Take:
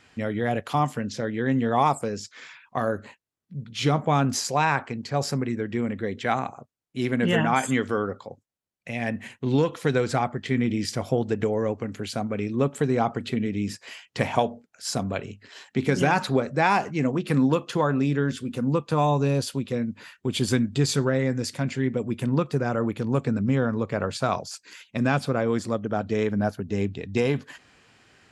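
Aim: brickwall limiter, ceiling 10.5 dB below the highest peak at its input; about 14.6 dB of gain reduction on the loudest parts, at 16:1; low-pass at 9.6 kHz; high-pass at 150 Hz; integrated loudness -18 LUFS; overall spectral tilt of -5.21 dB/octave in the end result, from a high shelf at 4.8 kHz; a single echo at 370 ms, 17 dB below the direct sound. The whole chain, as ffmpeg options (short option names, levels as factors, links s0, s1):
-af "highpass=150,lowpass=9600,highshelf=f=4800:g=-6.5,acompressor=threshold=0.0251:ratio=16,alimiter=level_in=1.88:limit=0.0631:level=0:latency=1,volume=0.531,aecho=1:1:370:0.141,volume=13.3"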